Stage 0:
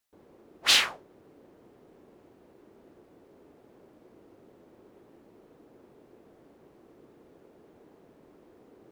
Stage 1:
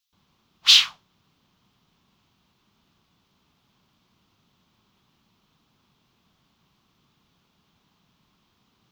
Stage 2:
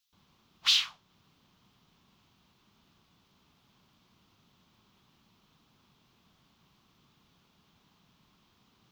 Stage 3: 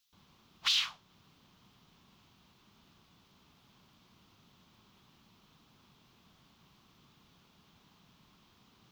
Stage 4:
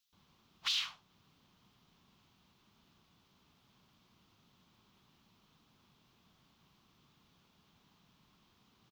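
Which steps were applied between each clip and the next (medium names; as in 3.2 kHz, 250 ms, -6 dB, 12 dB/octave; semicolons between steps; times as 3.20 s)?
FFT filter 190 Hz 0 dB, 320 Hz -17 dB, 510 Hz -20 dB, 1.1 kHz +2 dB, 1.8 kHz -3 dB, 3.3 kHz +13 dB, 6.1 kHz +9 dB, 8.9 kHz -3 dB, 15 kHz +5 dB; trim -3.5 dB
compression 2:1, threshold -30 dBFS, peak gain reduction 11 dB
peak limiter -21.5 dBFS, peak gain reduction 10 dB; trim +2.5 dB
delay 77 ms -17 dB; trim -5 dB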